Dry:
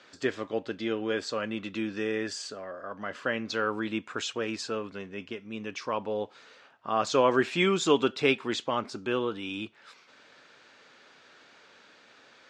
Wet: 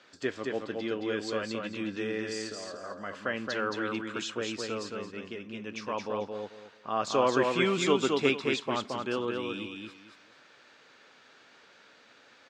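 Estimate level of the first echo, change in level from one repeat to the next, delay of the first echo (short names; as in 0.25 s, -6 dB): -3.5 dB, -12.5 dB, 0.221 s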